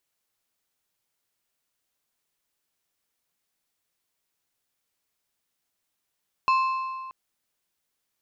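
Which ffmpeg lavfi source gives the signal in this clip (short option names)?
-f lavfi -i "aevalsrc='0.141*pow(10,-3*t/1.9)*sin(2*PI*1050*t)+0.0473*pow(10,-3*t/1.443)*sin(2*PI*2625*t)+0.0158*pow(10,-3*t/1.254)*sin(2*PI*4200*t)+0.00531*pow(10,-3*t/1.172)*sin(2*PI*5250*t)+0.00178*pow(10,-3*t/1.084)*sin(2*PI*6825*t)':d=0.63:s=44100"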